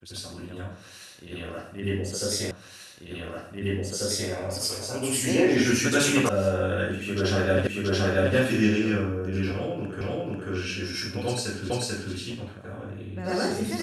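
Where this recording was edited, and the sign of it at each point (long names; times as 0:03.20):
0:02.51: the same again, the last 1.79 s
0:06.29: cut off before it has died away
0:07.67: the same again, the last 0.68 s
0:10.01: the same again, the last 0.49 s
0:11.70: the same again, the last 0.44 s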